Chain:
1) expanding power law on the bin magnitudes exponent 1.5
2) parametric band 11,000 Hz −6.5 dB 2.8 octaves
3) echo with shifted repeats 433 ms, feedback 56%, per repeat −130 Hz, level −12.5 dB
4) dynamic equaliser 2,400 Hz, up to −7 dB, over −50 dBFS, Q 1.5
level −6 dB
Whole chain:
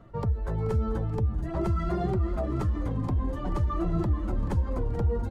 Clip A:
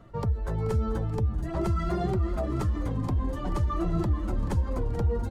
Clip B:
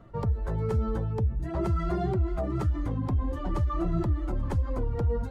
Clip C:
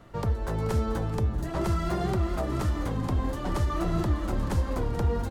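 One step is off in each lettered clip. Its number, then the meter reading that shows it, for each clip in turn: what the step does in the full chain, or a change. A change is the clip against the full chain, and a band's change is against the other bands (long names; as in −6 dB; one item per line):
2, 4 kHz band +4.0 dB
3, change in crest factor −2.0 dB
1, 4 kHz band +9.0 dB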